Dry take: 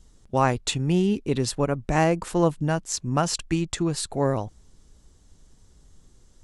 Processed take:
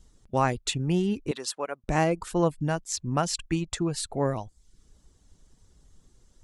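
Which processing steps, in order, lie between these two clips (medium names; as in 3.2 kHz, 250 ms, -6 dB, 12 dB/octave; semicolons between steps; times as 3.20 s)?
reverb removal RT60 0.5 s; 1.31–1.84 s: high-pass 590 Hz 12 dB/octave; trim -2.5 dB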